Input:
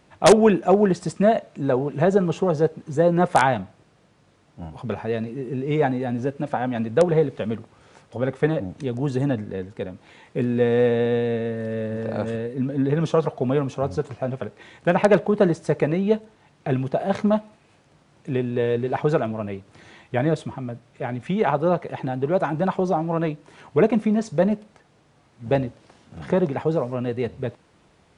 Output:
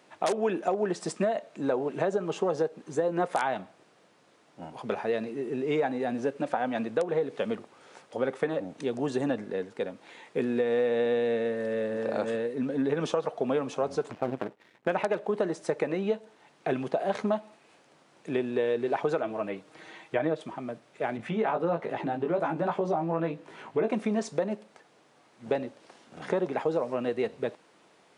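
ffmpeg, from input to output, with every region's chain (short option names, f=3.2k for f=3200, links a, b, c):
-filter_complex "[0:a]asettb=1/sr,asplit=3[a][b][c];[a]atrim=end=14.114[d];[b]atrim=start=14.11:end=14.88,asetpts=PTS-STARTPTS,afade=t=in:d=0.004:c=qsin,afade=t=out:st=0.766:d=0.004:c=qsin,bass=f=250:g=11,treble=f=4k:g=-8,aeval=exprs='max(val(0),0)':c=same,agate=range=-33dB:threshold=-41dB:ratio=3:release=100:detection=peak[e];[c]atrim=start=14.876[f];[d][e]acrossfade=d=0.004:c1=hsin:c2=qsin[g];[g][f]acrossfade=d=0.004:c1=qsin:c2=hsin,asettb=1/sr,asplit=3[h][i][j];[h]atrim=end=19.214[k];[i]atrim=start=19.21:end=20.41,asetpts=PTS-STARTPTS,afade=t=in:d=0.004:c=qsin,afade=t=out:st=1.196:d=0.004:c=qsin,acrossover=split=3700[l][m];[m]acompressor=threshold=-60dB:ratio=4:attack=1:release=60[n];[l][n]amix=inputs=2:normalize=0,aecho=1:1:6.4:0.46,atrim=end_sample=52920[o];[j]atrim=start=20.406[p];[k][o]acrossfade=d=0.004:c1=hsin:c2=qsin[q];[q][p]acrossfade=d=0.004:c1=qsin:c2=hsin,asettb=1/sr,asplit=3[r][s][t];[r]atrim=end=21.174[u];[s]atrim=start=21.17:end=23.88,asetpts=PTS-STARTPTS,afade=t=in:d=0.004:c=qsin,afade=t=out:st=2.706:d=0.004:c=qsin,bass=f=250:g=6,treble=f=4k:g=-7,asplit=2[v][w];[w]adelay=18,volume=-3.5dB[x];[v][x]amix=inputs=2:normalize=0,atrim=end_sample=119511,acompressor=threshold=-27dB:ratio=1.5:attack=3.2:release=140:knee=1:detection=peak[y];[t]atrim=start=23.876[z];[u][y]acrossfade=d=0.004:c1=hsin:c2=qsin[aa];[aa][z]acrossfade=d=0.004:c1=qsin:c2=hsin,highpass=300,alimiter=limit=-12.5dB:level=0:latency=1:release=403,acompressor=threshold=-23dB:ratio=6"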